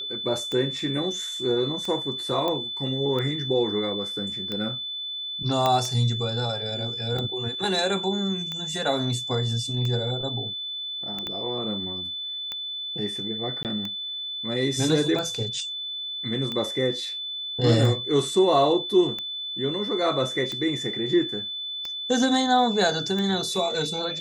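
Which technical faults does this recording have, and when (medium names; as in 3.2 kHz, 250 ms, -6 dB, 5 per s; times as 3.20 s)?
tick 45 rpm -18 dBFS
whine 3.5 kHz -30 dBFS
2.48 s: pop -14 dBFS
5.66 s: pop -9 dBFS
11.27 s: pop -18 dBFS
13.63–13.65 s: dropout 18 ms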